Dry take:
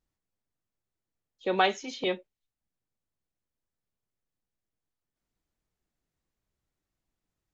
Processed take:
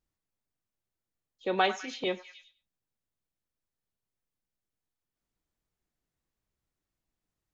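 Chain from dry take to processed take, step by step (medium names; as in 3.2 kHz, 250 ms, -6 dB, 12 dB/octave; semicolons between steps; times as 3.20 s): repeats whose band climbs or falls 100 ms, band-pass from 1.2 kHz, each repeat 0.7 oct, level -10 dB; trim -2 dB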